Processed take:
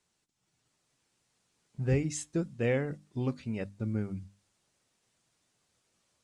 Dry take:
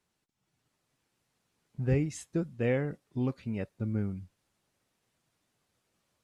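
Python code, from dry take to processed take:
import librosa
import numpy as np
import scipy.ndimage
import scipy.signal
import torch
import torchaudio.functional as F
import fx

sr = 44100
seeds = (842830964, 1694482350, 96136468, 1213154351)

y = scipy.signal.sosfilt(scipy.signal.butter(4, 9000.0, 'lowpass', fs=sr, output='sos'), x)
y = fx.high_shelf(y, sr, hz=5500.0, db=11.0)
y = fx.hum_notches(y, sr, base_hz=50, count=6)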